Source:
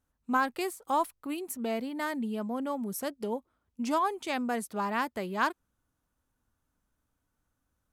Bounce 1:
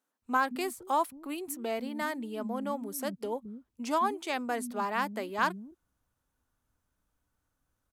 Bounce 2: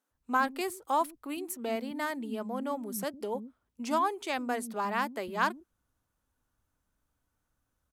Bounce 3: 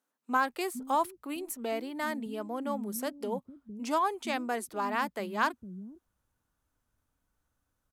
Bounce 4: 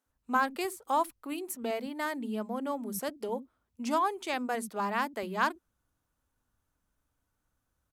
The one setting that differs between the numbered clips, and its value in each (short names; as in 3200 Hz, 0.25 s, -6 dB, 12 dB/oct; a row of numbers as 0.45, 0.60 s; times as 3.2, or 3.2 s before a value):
bands offset in time, time: 220, 110, 460, 60 ms